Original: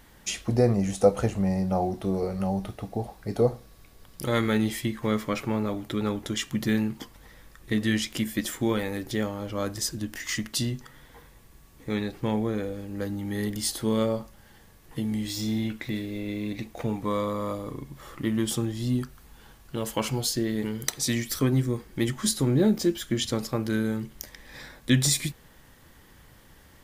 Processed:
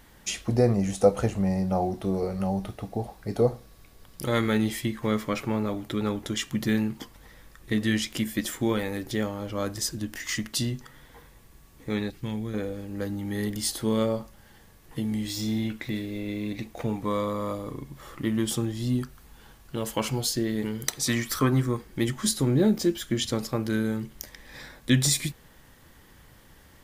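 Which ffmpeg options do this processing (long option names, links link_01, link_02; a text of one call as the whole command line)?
ffmpeg -i in.wav -filter_complex "[0:a]asettb=1/sr,asplit=3[link_01][link_02][link_03];[link_01]atrim=end=12.104[link_04];[link_02]atrim=start=12.1:end=12.54,asetpts=PTS-STARTPTS,afade=type=in:duration=0.004:curve=qsin,afade=type=out:start_time=0.436:duration=0.004:curve=qsin,equalizer=frequency=650:width_type=o:width=2.4:gain=-13[link_05];[link_03]atrim=start=12.536[link_06];[link_04][link_05]acrossfade=duration=0.004:curve1=hsin:curve2=qsin[link_07];[link_07][link_06]acrossfade=duration=0.004:curve1=qsin:curve2=hsin,asettb=1/sr,asplit=3[link_08][link_09][link_10];[link_08]atrim=end=21.064[link_11];[link_09]atrim=start=21.06:end=21.77,asetpts=PTS-STARTPTS,afade=type=in:duration=0.004:curve=qsin,afade=type=out:start_time=0.706:duration=0.004:curve=qsin,equalizer=frequency=1200:width_type=o:width=1:gain=10.5[link_12];[link_10]atrim=start=21.766[link_13];[link_11][link_12]acrossfade=duration=0.004:curve1=hsin:curve2=qsin[link_14];[link_14][link_13]acrossfade=duration=0.004:curve1=qsin:curve2=hsin" out.wav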